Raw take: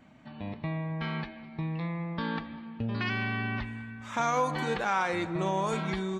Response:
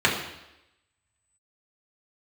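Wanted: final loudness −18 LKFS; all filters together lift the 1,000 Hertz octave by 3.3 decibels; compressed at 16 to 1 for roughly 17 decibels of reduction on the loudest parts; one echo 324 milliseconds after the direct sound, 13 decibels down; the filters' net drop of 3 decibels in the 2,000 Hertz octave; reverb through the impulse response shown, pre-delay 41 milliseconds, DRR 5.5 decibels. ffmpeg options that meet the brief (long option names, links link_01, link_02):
-filter_complex "[0:a]equalizer=frequency=1000:width_type=o:gain=5.5,equalizer=frequency=2000:width_type=o:gain=-6.5,acompressor=threshold=-38dB:ratio=16,aecho=1:1:324:0.224,asplit=2[link_01][link_02];[1:a]atrim=start_sample=2205,adelay=41[link_03];[link_02][link_03]afir=irnorm=-1:irlink=0,volume=-23.5dB[link_04];[link_01][link_04]amix=inputs=2:normalize=0,volume=23.5dB"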